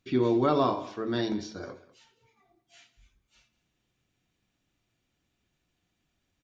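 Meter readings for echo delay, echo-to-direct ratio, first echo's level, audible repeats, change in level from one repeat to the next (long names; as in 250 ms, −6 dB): 85 ms, −15.5 dB, −18.5 dB, 2, repeats not evenly spaced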